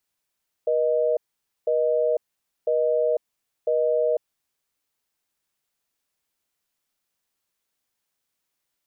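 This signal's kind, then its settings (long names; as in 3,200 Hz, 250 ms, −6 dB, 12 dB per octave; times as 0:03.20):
call progress tone busy tone, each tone −21.5 dBFS 3.76 s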